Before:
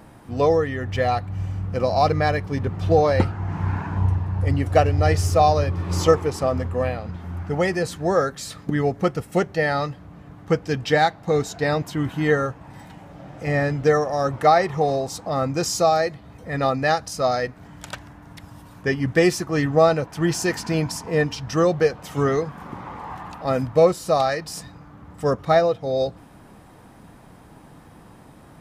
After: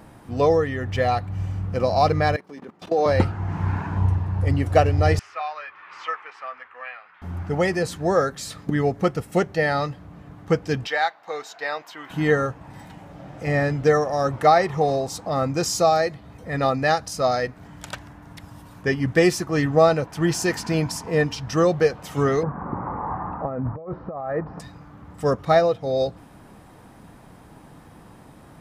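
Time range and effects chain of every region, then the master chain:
2.36–3.06 s: high-pass 220 Hz 24 dB/octave + level held to a coarse grid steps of 19 dB
5.19–7.22 s: Butterworth band-pass 1.8 kHz, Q 1.2 + doubling 12 ms -11.5 dB
10.87–12.10 s: high-pass 860 Hz + peaking EQ 9.6 kHz -13 dB 1.4 oct
22.43–24.60 s: low-pass 1.4 kHz 24 dB/octave + compressor with a negative ratio -28 dBFS
whole clip: none

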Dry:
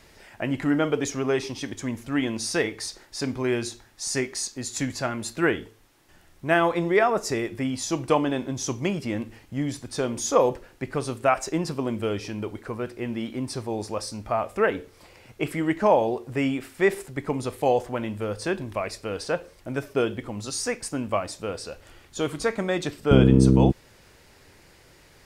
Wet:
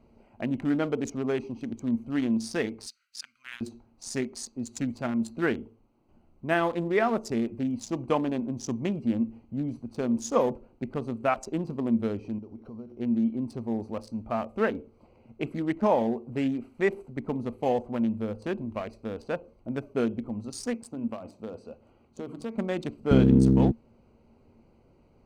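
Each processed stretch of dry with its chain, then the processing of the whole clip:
2.86–3.61 s: elliptic high-pass 1.4 kHz + tilt EQ +1.5 dB/octave
12.38–13.00 s: sorted samples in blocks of 8 samples + low-pass 3.7 kHz 6 dB/octave + compression 16:1, threshold -36 dBFS
20.73–22.56 s: high-pass 120 Hz 6 dB/octave + hum notches 50/100/150/200/250/300/350 Hz + compression 4:1, threshold -28 dBFS
whole clip: local Wiener filter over 25 samples; peaking EQ 230 Hz +14 dB 0.2 oct; trim -4.5 dB

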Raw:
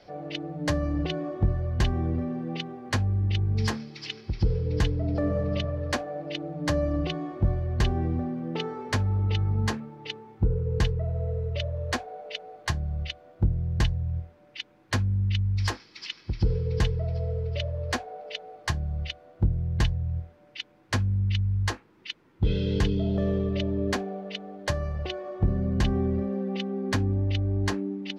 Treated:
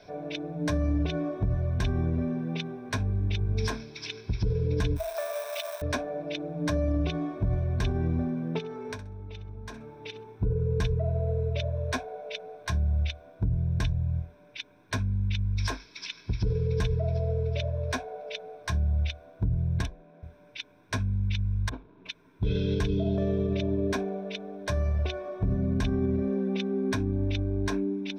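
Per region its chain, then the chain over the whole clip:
4.96–5.82 s: jump at every zero crossing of -35.5 dBFS + elliptic high-pass 630 Hz, stop band 60 dB + treble shelf 6.8 kHz +11.5 dB
8.58–10.36 s: compression 12:1, threshold -35 dBFS + flutter echo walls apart 11.1 m, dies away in 0.27 s
19.82–20.23 s: self-modulated delay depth 0.12 ms + steep high-pass 200 Hz 72 dB/octave + treble shelf 3.6 kHz -11 dB
21.69–22.09 s: median filter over 25 samples + compressor with a negative ratio -38 dBFS, ratio -0.5 + distance through air 250 m
whole clip: rippled EQ curve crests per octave 1.6, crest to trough 11 dB; peak limiter -19 dBFS

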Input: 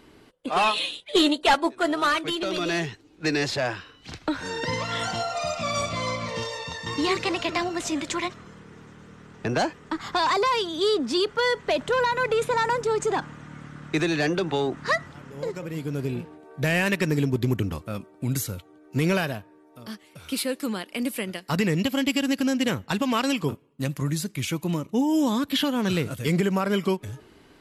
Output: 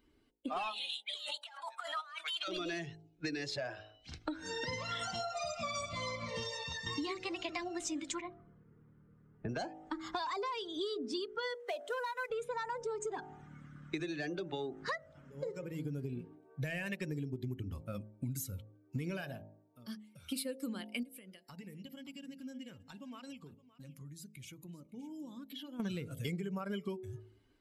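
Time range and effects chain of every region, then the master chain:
0.89–2.48 s: high-pass 790 Hz 24 dB/octave + compressor with a negative ratio -35 dBFS
8.21–9.49 s: tape spacing loss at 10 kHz 39 dB + doubling 19 ms -9.5 dB + de-hum 250.4 Hz, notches 5
11.54–12.30 s: CVSD coder 64 kbps + high-pass 450 Hz
21.03–25.80 s: compression 4:1, threshold -40 dBFS + delay 567 ms -12 dB
whole clip: expander on every frequency bin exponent 1.5; de-hum 53.33 Hz, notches 17; compression 12:1, threshold -37 dBFS; trim +1.5 dB

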